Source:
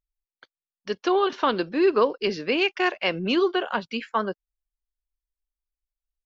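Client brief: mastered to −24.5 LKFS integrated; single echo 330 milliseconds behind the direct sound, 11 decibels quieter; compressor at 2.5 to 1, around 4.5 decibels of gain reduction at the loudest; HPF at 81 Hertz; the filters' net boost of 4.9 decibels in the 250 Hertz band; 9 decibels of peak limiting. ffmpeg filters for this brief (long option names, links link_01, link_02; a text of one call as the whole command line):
ffmpeg -i in.wav -af "highpass=81,equalizer=frequency=250:width_type=o:gain=7.5,acompressor=threshold=-20dB:ratio=2.5,alimiter=limit=-18.5dB:level=0:latency=1,aecho=1:1:330:0.282,volume=3.5dB" out.wav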